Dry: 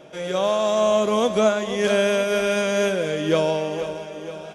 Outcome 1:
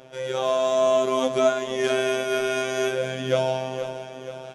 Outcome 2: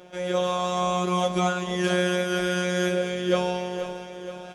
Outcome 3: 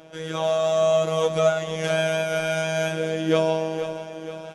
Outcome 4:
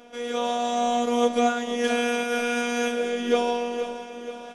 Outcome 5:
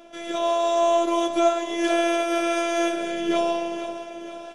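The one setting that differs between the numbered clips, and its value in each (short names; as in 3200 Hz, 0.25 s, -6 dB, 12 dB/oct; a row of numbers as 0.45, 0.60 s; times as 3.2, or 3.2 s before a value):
robotiser, frequency: 130, 180, 160, 240, 340 Hz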